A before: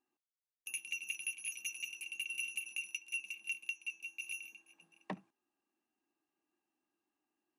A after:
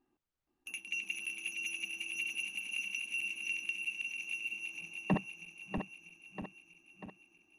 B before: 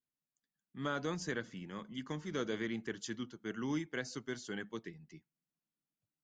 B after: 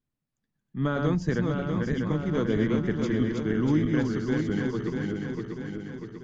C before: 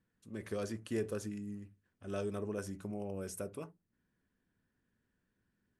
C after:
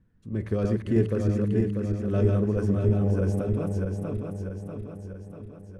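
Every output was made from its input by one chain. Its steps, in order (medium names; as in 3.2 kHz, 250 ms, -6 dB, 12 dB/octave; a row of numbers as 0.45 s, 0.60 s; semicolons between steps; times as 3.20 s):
backward echo that repeats 321 ms, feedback 73%, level -3 dB; RIAA curve playback; trim +6 dB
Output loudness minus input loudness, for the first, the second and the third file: +3.0 LU, +13.0 LU, +14.5 LU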